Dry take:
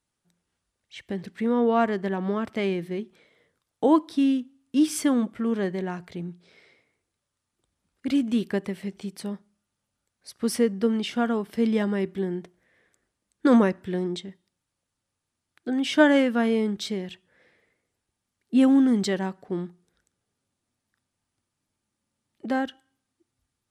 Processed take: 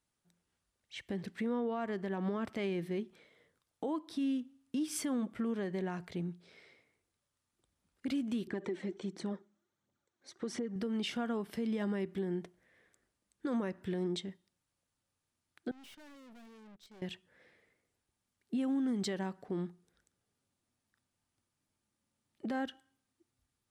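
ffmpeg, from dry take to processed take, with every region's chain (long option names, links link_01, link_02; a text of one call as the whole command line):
ffmpeg -i in.wav -filter_complex "[0:a]asettb=1/sr,asplit=3[link_01][link_02][link_03];[link_01]atrim=end=8.474[link_04];[link_02]atrim=start=8.47:end=10.76,asetpts=PTS-STARTPTS,afade=type=in:duration=0.004:curve=qsin,afade=type=out:start_time=2.286:duration=0.004:curve=qsin,aphaser=in_gain=1:out_gain=1:delay=3.9:decay=0.52:speed=1.4:type=triangular,acompressor=threshold=-29dB:ratio=6:attack=3.2:release=140:knee=1:detection=peak,highpass=130,equalizer=frequency=350:width_type=q:width=4:gain=10,equalizer=frequency=2700:width_type=q:width=4:gain=-7,equalizer=frequency=4900:width_type=q:width=4:gain=-10,lowpass=frequency=6800:width=0.5412,lowpass=frequency=6800:width=1.3066[link_05];[link_03]atrim=start=10.756[link_06];[link_04][link_05]acrossfade=duration=0.004:curve1=hsin:curve2=qsin[link_07];[link_07][link_06]acrossfade=duration=0.004:curve1=qsin:curve2=hsin,asettb=1/sr,asplit=3[link_08][link_09][link_10];[link_08]atrim=end=15.714[link_11];[link_09]atrim=start=15.71:end=17.02,asetpts=PTS-STARTPTS,afade=type=in:duration=0.004:curve=qsin,afade=type=out:start_time=1.306:duration=0.004:curve=qsin,agate=range=-24dB:threshold=-30dB:ratio=16:release=100:detection=peak,acompressor=threshold=-31dB:ratio=20:attack=3.2:release=140:knee=1:detection=peak,aeval=exprs='(tanh(355*val(0)+0.4)-tanh(0.4))/355':channel_layout=same[link_12];[link_10]atrim=start=17.016[link_13];[link_11][link_12]acrossfade=duration=0.004:curve1=hsin:curve2=qsin[link_14];[link_14][link_13]acrossfade=duration=0.004:curve1=qsin:curve2=hsin,acompressor=threshold=-27dB:ratio=4,alimiter=limit=-24dB:level=0:latency=1:release=80,volume=-3.5dB" out.wav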